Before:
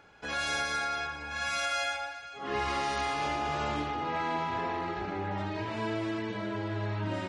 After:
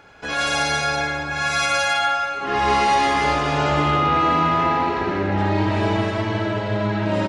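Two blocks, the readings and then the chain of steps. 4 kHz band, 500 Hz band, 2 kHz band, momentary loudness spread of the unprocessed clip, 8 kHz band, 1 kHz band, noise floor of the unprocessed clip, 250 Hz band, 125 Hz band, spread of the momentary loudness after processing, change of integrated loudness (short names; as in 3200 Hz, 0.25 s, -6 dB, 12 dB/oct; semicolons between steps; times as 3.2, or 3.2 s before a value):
+11.0 dB, +12.5 dB, +11.5 dB, 5 LU, +11.0 dB, +13.0 dB, -44 dBFS, +12.5 dB, +13.5 dB, 6 LU, +12.5 dB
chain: loudspeakers at several distances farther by 21 m -6 dB, 56 m -9 dB; digital reverb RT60 3.1 s, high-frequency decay 0.35×, pre-delay 60 ms, DRR 1.5 dB; gain +8.5 dB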